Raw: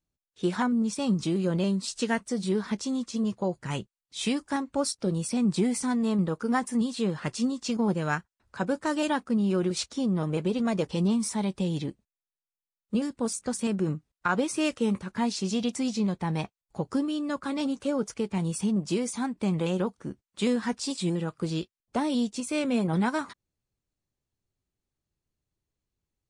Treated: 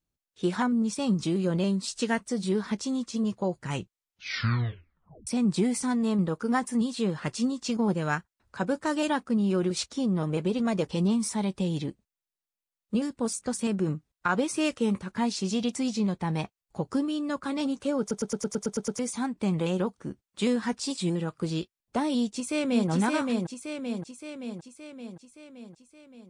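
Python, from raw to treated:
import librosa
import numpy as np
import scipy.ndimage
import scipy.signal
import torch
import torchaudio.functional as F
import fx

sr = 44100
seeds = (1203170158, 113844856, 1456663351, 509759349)

y = fx.echo_throw(x, sr, start_s=22.15, length_s=0.74, ms=570, feedback_pct=60, wet_db=-3.0)
y = fx.edit(y, sr, fx.tape_stop(start_s=3.71, length_s=1.56),
    fx.stutter_over(start_s=18.0, slice_s=0.11, count=9), tone=tone)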